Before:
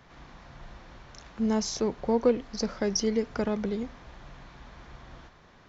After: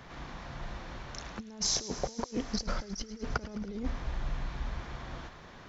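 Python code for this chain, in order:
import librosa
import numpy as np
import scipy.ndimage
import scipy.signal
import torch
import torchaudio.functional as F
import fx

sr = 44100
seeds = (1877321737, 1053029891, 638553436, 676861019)

y = fx.low_shelf(x, sr, hz=81.0, db=12.0, at=(2.57, 4.8))
y = fx.over_compress(y, sr, threshold_db=-34.0, ratio=-0.5)
y = fx.echo_wet_highpass(y, sr, ms=107, feedback_pct=78, hz=2100.0, wet_db=-15.0)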